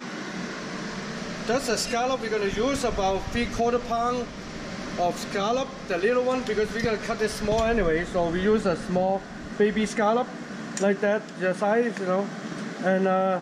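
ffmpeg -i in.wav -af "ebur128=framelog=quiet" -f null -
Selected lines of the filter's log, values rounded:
Integrated loudness:
  I:         -26.0 LUFS
  Threshold: -36.1 LUFS
Loudness range:
  LRA:         2.3 LU
  Threshold: -45.9 LUFS
  LRA low:   -27.0 LUFS
  LRA high:  -24.8 LUFS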